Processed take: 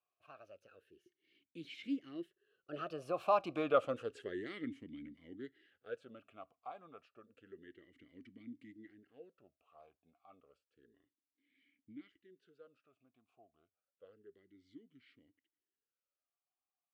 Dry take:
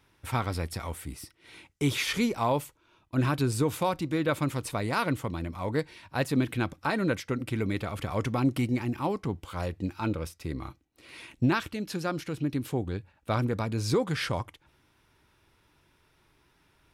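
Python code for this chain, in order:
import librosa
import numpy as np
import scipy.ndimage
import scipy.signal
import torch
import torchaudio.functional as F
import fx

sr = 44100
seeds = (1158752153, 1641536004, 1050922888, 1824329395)

y = fx.doppler_pass(x, sr, speed_mps=49, closest_m=11.0, pass_at_s=3.55)
y = fx.vowel_sweep(y, sr, vowels='a-i', hz=0.3)
y = y * 10.0 ** (10.5 / 20.0)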